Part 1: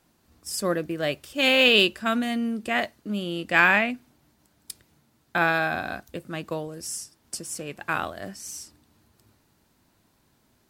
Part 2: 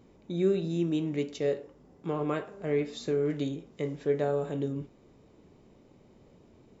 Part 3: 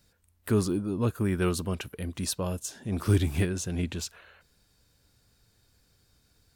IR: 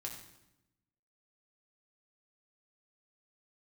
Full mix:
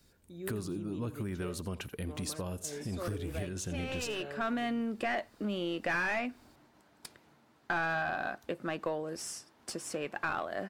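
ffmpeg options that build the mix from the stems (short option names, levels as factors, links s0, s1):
-filter_complex "[0:a]asplit=2[s0][s1];[s1]highpass=f=720:p=1,volume=14.1,asoftclip=type=tanh:threshold=0.668[s2];[s0][s2]amix=inputs=2:normalize=0,lowpass=f=1100:p=1,volume=0.501,adelay=2350,volume=0.398[s3];[1:a]volume=0.168[s4];[2:a]acompressor=threshold=0.02:ratio=4,volume=1,asplit=3[s5][s6][s7];[s6]volume=0.133[s8];[s7]apad=whole_len=575174[s9];[s3][s9]sidechaincompress=threshold=0.00282:ratio=4:attack=16:release=418[s10];[s8]aecho=0:1:84:1[s11];[s10][s4][s5][s11]amix=inputs=4:normalize=0,acompressor=threshold=0.0224:ratio=2.5"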